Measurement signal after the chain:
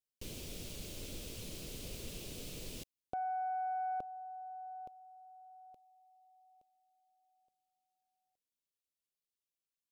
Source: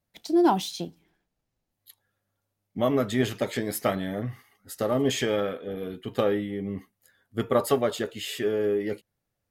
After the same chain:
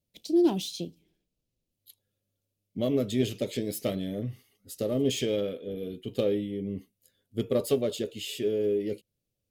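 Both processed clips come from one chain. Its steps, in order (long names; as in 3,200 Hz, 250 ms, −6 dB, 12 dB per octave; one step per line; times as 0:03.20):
phase distortion by the signal itself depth 0.052 ms
flat-topped bell 1,200 Hz −15 dB
level −1.5 dB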